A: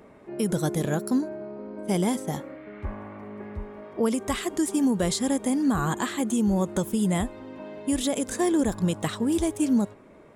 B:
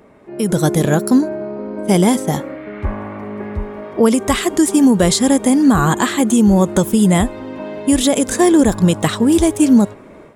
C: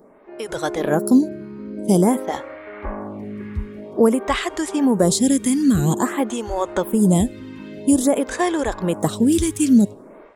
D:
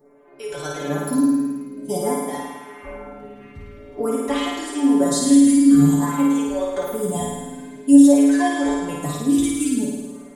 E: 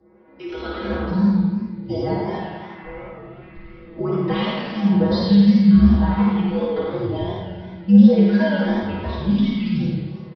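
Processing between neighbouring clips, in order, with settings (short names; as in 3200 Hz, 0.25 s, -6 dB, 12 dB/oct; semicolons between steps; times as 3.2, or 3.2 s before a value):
AGC gain up to 8.5 dB; gain +3.5 dB
photocell phaser 0.5 Hz; gain -1.5 dB
metallic resonator 140 Hz, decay 0.33 s, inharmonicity 0.002; flutter echo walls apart 9.2 m, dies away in 1.3 s; gain +6.5 dB
downsampling 11025 Hz; frequency shift -78 Hz; warbling echo 86 ms, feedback 58%, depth 154 cents, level -5 dB; gain -1 dB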